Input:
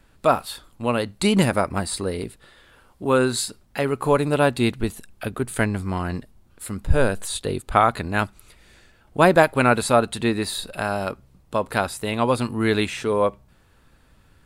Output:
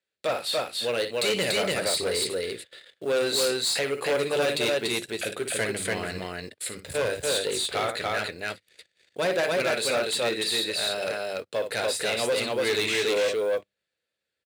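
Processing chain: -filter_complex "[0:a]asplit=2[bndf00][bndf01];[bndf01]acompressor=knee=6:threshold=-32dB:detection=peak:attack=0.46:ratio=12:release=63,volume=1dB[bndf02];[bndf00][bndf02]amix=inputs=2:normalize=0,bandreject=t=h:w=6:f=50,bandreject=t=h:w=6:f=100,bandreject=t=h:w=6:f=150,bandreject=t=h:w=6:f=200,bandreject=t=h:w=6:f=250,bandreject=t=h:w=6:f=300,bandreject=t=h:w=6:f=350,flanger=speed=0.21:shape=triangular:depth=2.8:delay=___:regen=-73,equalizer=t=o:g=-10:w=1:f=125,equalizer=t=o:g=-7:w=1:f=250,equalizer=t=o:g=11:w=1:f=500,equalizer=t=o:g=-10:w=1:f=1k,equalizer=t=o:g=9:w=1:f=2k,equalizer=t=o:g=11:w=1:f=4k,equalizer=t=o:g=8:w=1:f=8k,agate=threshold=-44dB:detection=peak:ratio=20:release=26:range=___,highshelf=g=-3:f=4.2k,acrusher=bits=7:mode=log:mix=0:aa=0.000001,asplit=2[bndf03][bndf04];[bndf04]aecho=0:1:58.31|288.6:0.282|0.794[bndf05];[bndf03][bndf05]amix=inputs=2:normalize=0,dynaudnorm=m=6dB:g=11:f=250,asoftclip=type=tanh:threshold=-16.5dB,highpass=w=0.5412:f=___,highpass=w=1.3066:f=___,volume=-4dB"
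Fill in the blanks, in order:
5.1, -29dB, 94, 94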